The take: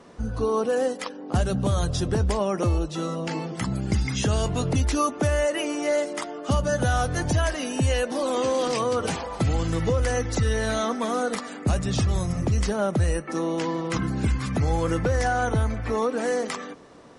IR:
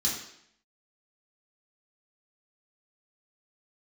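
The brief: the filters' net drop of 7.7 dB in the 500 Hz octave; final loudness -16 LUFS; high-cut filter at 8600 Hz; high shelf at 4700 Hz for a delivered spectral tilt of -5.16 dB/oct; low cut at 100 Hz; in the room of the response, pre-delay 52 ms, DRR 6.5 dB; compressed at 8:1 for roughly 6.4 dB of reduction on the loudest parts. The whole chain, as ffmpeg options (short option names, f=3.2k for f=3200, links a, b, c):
-filter_complex "[0:a]highpass=100,lowpass=8.6k,equalizer=f=500:t=o:g=-9,highshelf=f=4.7k:g=-4,acompressor=threshold=-28dB:ratio=8,asplit=2[a][b];[1:a]atrim=start_sample=2205,adelay=52[c];[b][c]afir=irnorm=-1:irlink=0,volume=-13dB[d];[a][d]amix=inputs=2:normalize=0,volume=15.5dB"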